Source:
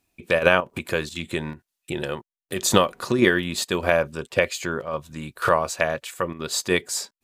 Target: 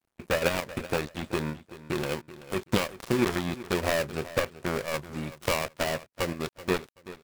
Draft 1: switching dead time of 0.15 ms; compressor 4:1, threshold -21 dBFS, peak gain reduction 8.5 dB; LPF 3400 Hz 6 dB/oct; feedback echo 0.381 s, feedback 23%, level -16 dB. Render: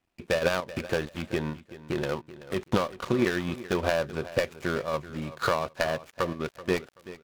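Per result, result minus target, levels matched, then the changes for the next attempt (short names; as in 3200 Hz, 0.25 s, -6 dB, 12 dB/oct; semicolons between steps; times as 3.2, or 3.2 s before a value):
switching dead time: distortion -6 dB; 4000 Hz band -2.5 dB
change: switching dead time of 0.37 ms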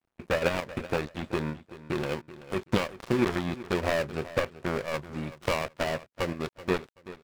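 4000 Hz band -2.5 dB
remove: LPF 3400 Hz 6 dB/oct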